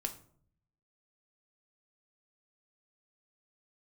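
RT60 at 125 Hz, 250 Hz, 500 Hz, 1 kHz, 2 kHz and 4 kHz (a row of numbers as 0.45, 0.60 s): 1.1, 0.85, 0.65, 0.50, 0.40, 0.30 s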